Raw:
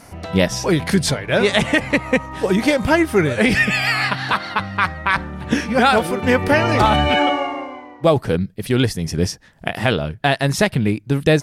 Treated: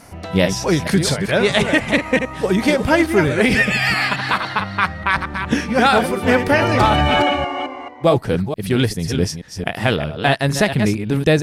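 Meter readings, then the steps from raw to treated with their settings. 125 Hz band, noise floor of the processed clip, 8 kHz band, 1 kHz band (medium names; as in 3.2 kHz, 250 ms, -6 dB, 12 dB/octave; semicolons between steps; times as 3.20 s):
+0.5 dB, -33 dBFS, +0.5 dB, +0.5 dB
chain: chunks repeated in reverse 219 ms, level -7.5 dB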